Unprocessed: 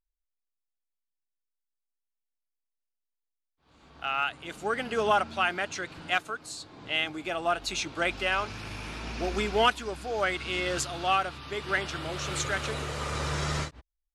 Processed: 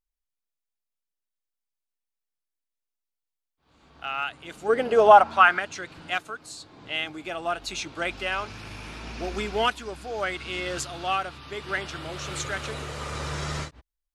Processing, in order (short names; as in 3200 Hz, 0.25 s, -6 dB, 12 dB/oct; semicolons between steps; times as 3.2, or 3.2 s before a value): 4.68–5.58 bell 360 Hz -> 1500 Hz +15 dB 1.4 oct; gain -1 dB